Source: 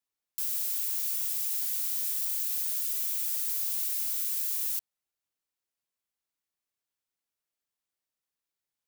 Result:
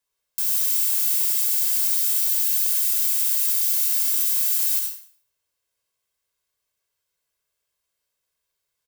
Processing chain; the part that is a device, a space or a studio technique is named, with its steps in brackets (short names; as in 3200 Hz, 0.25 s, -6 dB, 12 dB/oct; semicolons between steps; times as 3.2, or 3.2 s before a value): microphone above a desk (comb 1.9 ms, depth 55%; reverb RT60 0.60 s, pre-delay 62 ms, DRR 2 dB); gain +6.5 dB